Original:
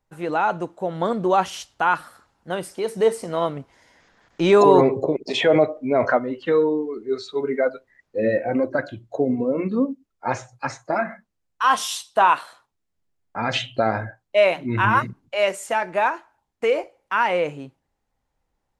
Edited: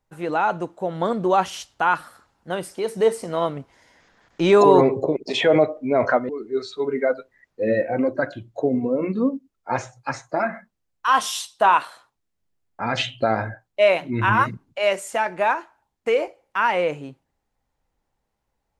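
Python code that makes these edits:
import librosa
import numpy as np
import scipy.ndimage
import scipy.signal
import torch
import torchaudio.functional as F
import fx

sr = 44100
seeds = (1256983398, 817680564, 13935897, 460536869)

y = fx.edit(x, sr, fx.cut(start_s=6.29, length_s=0.56), tone=tone)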